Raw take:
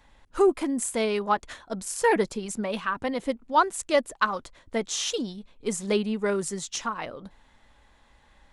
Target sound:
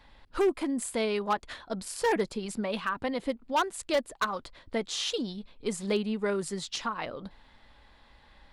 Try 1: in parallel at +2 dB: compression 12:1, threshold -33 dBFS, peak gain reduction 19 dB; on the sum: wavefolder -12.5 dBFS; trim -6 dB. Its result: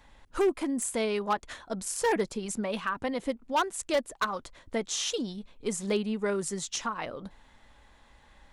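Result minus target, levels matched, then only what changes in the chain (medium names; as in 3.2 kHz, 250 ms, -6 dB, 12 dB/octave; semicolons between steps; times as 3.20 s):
8 kHz band +4.5 dB
add after compression: resonant high shelf 6.8 kHz -13 dB, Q 3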